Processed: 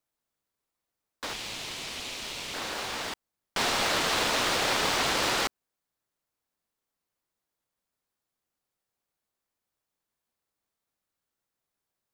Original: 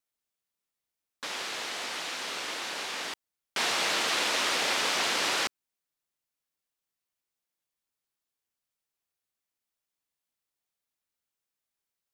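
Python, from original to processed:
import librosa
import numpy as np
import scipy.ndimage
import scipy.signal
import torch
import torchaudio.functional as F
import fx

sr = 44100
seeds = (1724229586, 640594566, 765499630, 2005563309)

p1 = fx.cheby1_highpass(x, sr, hz=2300.0, order=3, at=(1.33, 2.54))
p2 = fx.sample_hold(p1, sr, seeds[0], rate_hz=3300.0, jitter_pct=0)
y = p1 + (p2 * 10.0 ** (-6.0 / 20.0))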